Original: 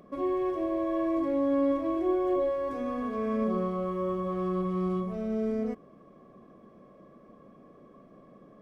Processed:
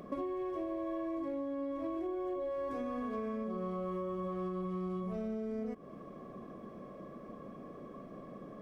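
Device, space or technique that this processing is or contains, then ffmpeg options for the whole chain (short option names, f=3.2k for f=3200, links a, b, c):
serial compression, leveller first: -af "acompressor=threshold=-30dB:ratio=6,acompressor=threshold=-41dB:ratio=6,volume=5.5dB"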